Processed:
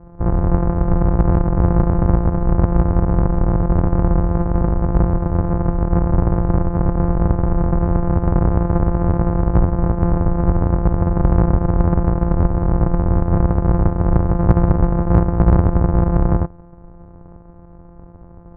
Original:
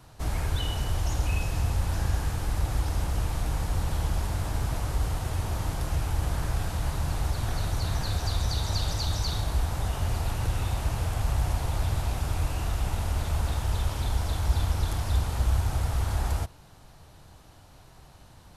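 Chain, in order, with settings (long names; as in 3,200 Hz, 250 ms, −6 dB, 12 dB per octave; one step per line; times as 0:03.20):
samples sorted by size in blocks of 256 samples
low-pass filter 1,100 Hz 24 dB per octave
low-shelf EQ 120 Hz +5 dB
in parallel at −5.5 dB: asymmetric clip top −15 dBFS
on the sum: highs frequency-modulated by the lows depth 0.25 ms
level +5.5 dB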